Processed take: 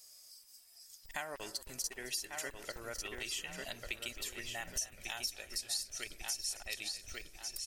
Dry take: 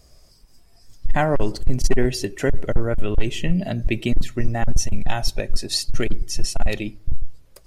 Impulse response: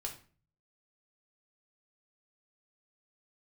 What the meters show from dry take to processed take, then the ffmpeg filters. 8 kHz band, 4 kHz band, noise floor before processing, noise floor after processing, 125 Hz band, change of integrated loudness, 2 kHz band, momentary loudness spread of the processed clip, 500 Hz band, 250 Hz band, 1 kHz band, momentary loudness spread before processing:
-6.5 dB, -9.5 dB, -52 dBFS, -60 dBFS, -33.0 dB, -15.0 dB, -11.0 dB, 16 LU, -23.0 dB, -29.0 dB, -18.5 dB, 7 LU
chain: -filter_complex "[0:a]aderivative,asplit=2[a][b];[b]adelay=1144,lowpass=f=2.8k:p=1,volume=-6dB,asplit=2[c][d];[d]adelay=1144,lowpass=f=2.8k:p=1,volume=0.39,asplit=2[e][f];[f]adelay=1144,lowpass=f=2.8k:p=1,volume=0.39,asplit=2[g][h];[h]adelay=1144,lowpass=f=2.8k:p=1,volume=0.39,asplit=2[i][j];[j]adelay=1144,lowpass=f=2.8k:p=1,volume=0.39[k];[c][e][g][i][k]amix=inputs=5:normalize=0[l];[a][l]amix=inputs=2:normalize=0,acompressor=threshold=-41dB:ratio=4,asplit=2[m][n];[n]asplit=5[o][p][q][r][s];[o]adelay=266,afreqshift=-46,volume=-16dB[t];[p]adelay=532,afreqshift=-92,volume=-21.7dB[u];[q]adelay=798,afreqshift=-138,volume=-27.4dB[v];[r]adelay=1064,afreqshift=-184,volume=-33dB[w];[s]adelay=1330,afreqshift=-230,volume=-38.7dB[x];[t][u][v][w][x]amix=inputs=5:normalize=0[y];[m][y]amix=inputs=2:normalize=0,asubboost=boost=7:cutoff=64,volume=3.5dB"

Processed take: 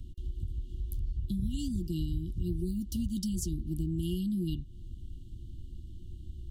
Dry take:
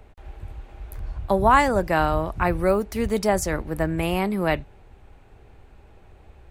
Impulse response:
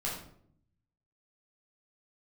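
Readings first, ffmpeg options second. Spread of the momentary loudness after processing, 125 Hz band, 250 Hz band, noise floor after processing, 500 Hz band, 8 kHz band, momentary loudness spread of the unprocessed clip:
15 LU, -4.0 dB, -6.5 dB, -46 dBFS, -23.0 dB, -8.5 dB, 23 LU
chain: -af "afftfilt=real='re*(1-between(b*sr/4096,370,2800))':imag='im*(1-between(b*sr/4096,370,2800))':win_size=4096:overlap=0.75,bass=f=250:g=7,treble=f=4k:g=1,acompressor=threshold=-33dB:ratio=3"

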